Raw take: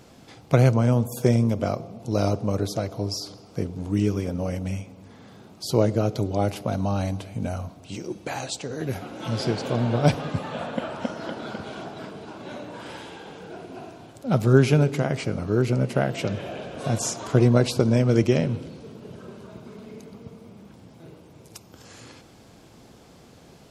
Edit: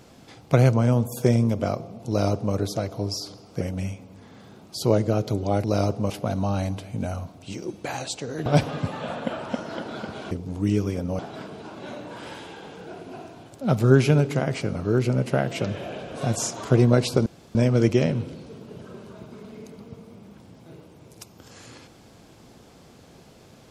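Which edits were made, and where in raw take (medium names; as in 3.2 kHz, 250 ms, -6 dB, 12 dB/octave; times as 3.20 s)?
2.08–2.54 s: copy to 6.52 s
3.61–4.49 s: move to 11.82 s
8.88–9.97 s: delete
17.89 s: insert room tone 0.29 s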